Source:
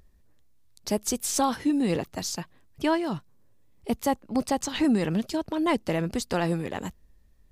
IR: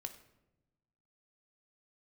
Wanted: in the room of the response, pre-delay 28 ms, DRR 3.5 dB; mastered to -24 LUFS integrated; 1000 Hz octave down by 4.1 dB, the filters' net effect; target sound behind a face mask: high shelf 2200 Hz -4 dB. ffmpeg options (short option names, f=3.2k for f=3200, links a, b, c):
-filter_complex "[0:a]equalizer=f=1k:t=o:g=-4.5,asplit=2[a][b];[1:a]atrim=start_sample=2205,adelay=28[c];[b][c]afir=irnorm=-1:irlink=0,volume=0dB[d];[a][d]amix=inputs=2:normalize=0,highshelf=f=2.2k:g=-4,volume=3.5dB"